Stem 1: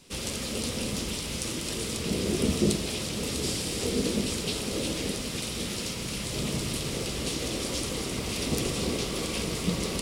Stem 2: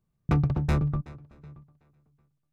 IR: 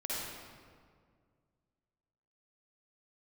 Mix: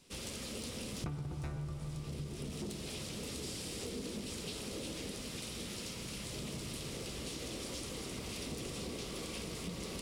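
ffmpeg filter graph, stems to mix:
-filter_complex "[0:a]asoftclip=type=tanh:threshold=-20dB,volume=-8.5dB[a];[1:a]adelay=750,volume=-1dB,asplit=2[b][c];[c]volume=-3.5dB[d];[2:a]atrim=start_sample=2205[e];[d][e]afir=irnorm=-1:irlink=0[f];[a][b][f]amix=inputs=3:normalize=0,acompressor=threshold=-38dB:ratio=10"

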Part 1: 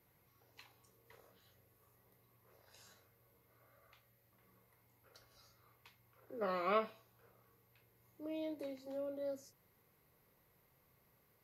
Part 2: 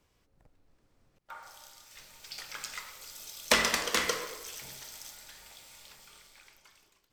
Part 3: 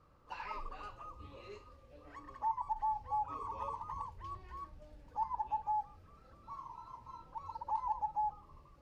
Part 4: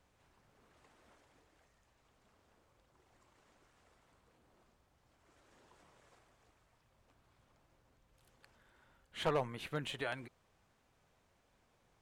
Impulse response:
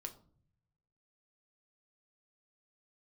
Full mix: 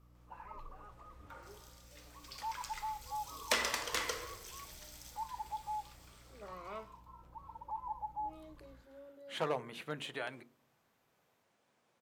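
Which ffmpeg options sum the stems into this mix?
-filter_complex "[0:a]volume=-12dB[a];[1:a]highpass=f=250:w=0.5412,highpass=f=250:w=1.3066,volume=-7.5dB[b];[2:a]lowpass=1.3k,aeval=exprs='val(0)+0.00158*(sin(2*PI*60*n/s)+sin(2*PI*2*60*n/s)/2+sin(2*PI*3*60*n/s)/3+sin(2*PI*4*60*n/s)/4+sin(2*PI*5*60*n/s)/5)':c=same,volume=-7.5dB,asplit=2[c][d];[d]volume=-5dB[e];[3:a]highpass=170,adelay=150,volume=-3.5dB,asplit=2[f][g];[g]volume=-4.5dB[h];[4:a]atrim=start_sample=2205[i];[e][h]amix=inputs=2:normalize=0[j];[j][i]afir=irnorm=-1:irlink=0[k];[a][b][c][f][k]amix=inputs=5:normalize=0,bandreject=f=47.69:t=h:w=4,bandreject=f=95.38:t=h:w=4,bandreject=f=143.07:t=h:w=4,bandreject=f=190.76:t=h:w=4,bandreject=f=238.45:t=h:w=4,bandreject=f=286.14:t=h:w=4,bandreject=f=333.83:t=h:w=4,bandreject=f=381.52:t=h:w=4,bandreject=f=429.21:t=h:w=4,bandreject=f=476.9:t=h:w=4"

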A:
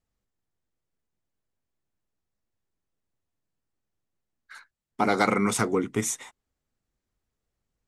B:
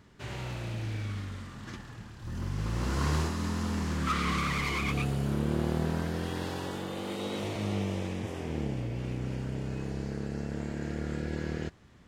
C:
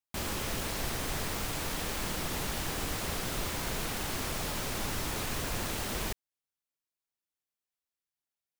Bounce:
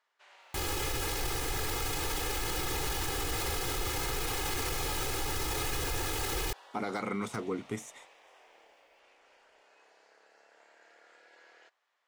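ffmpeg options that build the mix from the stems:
-filter_complex "[0:a]deesser=0.65,adelay=1750,volume=-9dB[a];[1:a]highpass=f=650:w=0.5412,highpass=f=650:w=1.3066,highshelf=f=8.4k:g=-11,volume=-13dB[b];[2:a]aecho=1:1:2.4:0.97,adelay=400,volume=2dB[c];[a][b][c]amix=inputs=3:normalize=0,alimiter=limit=-24dB:level=0:latency=1:release=20"

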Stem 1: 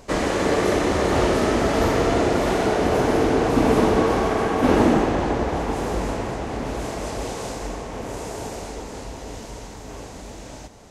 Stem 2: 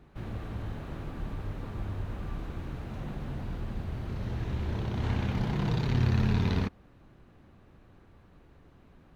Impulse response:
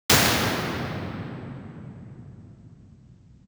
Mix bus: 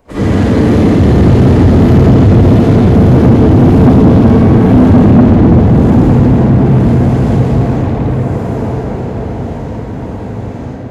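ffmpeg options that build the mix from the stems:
-filter_complex "[0:a]agate=range=-7dB:threshold=-28dB:ratio=16:detection=peak,acrossover=split=270|3000[a][b][c];[b]acompressor=threshold=-35dB:ratio=6[d];[a][d][c]amix=inputs=3:normalize=0,volume=2dB,asplit=2[e][f];[f]volume=-13dB[g];[1:a]adelay=1550,volume=3dB,asplit=3[h][i][j];[h]atrim=end=4.22,asetpts=PTS-STARTPTS,afade=t=out:st=4.216:d=0.004:c=hsin[k];[i]atrim=start=4.22:end=5.04,asetpts=PTS-STARTPTS,volume=0[l];[j]atrim=start=5.04,asetpts=PTS-STARTPTS,afade=t=in:d=0.004:c=hsin[m];[k][l][m]concat=n=3:v=0:a=1[n];[2:a]atrim=start_sample=2205[o];[g][o]afir=irnorm=-1:irlink=0[p];[e][n][p]amix=inputs=3:normalize=0,equalizer=f=5.9k:w=0.78:g=-12.5,asoftclip=type=tanh:threshold=-1dB"

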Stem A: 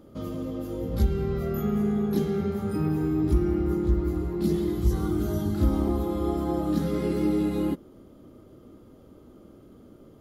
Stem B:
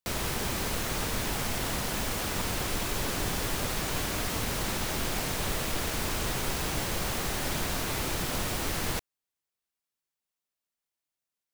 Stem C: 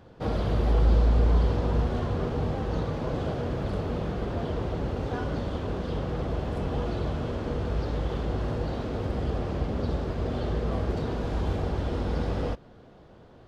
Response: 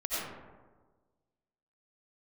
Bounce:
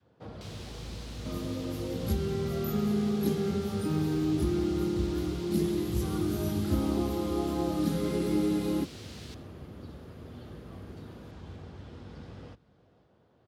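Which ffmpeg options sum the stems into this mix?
-filter_complex "[0:a]equalizer=f=9.8k:t=o:w=0.92:g=6.5,adelay=1100,volume=-3dB[a];[1:a]bandpass=f=4k:t=q:w=1.5:csg=0,adelay=350,volume=-11dB,asplit=2[b][c];[c]volume=-17.5dB[d];[2:a]adynamicequalizer=threshold=0.00562:dfrequency=610:dqfactor=0.77:tfrequency=610:tqfactor=0.77:attack=5:release=100:ratio=0.375:range=3.5:mode=cutabove:tftype=bell,acrossover=split=220[e][f];[f]acompressor=threshold=-30dB:ratio=6[g];[e][g]amix=inputs=2:normalize=0,volume=-13dB,asplit=2[h][i];[i]volume=-23dB[j];[3:a]atrim=start_sample=2205[k];[d][k]afir=irnorm=-1:irlink=0[l];[j]aecho=0:1:507:1[m];[a][b][h][l][m]amix=inputs=5:normalize=0,highpass=f=74:w=0.5412,highpass=f=74:w=1.3066"

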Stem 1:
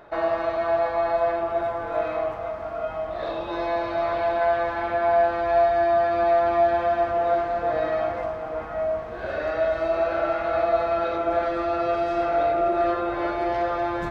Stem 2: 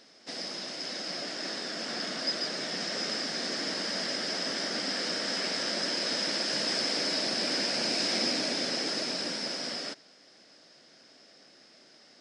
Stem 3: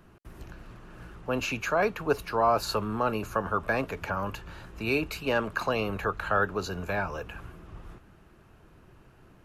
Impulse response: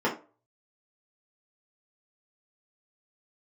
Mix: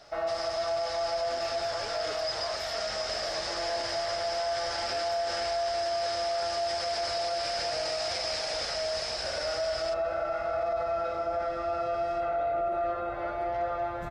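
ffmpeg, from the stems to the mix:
-filter_complex "[0:a]aemphasis=mode=production:type=50kf,aecho=1:1:1.5:0.46,adynamicequalizer=threshold=0.0112:dfrequency=2400:dqfactor=0.7:tfrequency=2400:tqfactor=0.7:attack=5:release=100:ratio=0.375:range=4:mode=cutabove:tftype=highshelf,volume=-8dB[a];[1:a]highpass=f=510:w=0.5412,highpass=f=510:w=1.3066,equalizer=f=850:t=o:w=0.26:g=4.5,volume=-1dB[b];[2:a]highpass=340,volume=-16.5dB[c];[a][b][c]amix=inputs=3:normalize=0,alimiter=limit=-23dB:level=0:latency=1:release=26"

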